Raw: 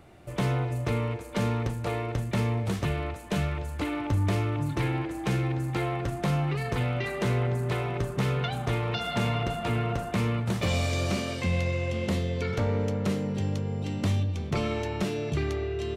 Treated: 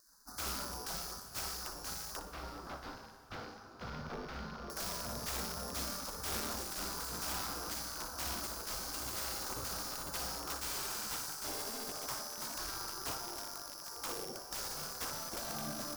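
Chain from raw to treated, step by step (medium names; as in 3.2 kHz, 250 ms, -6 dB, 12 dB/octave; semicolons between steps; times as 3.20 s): sorted samples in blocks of 8 samples; high-pass 230 Hz 6 dB/octave; spectral gate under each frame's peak -20 dB weak; Chebyshev band-stop 1.5–4.8 kHz, order 3; bass shelf 390 Hz +8 dB; integer overflow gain 35 dB; 2.19–4.70 s: distance through air 280 m; flutter echo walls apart 10.2 m, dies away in 0.34 s; plate-style reverb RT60 4.8 s, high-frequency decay 0.9×, DRR 12 dB; trim +3.5 dB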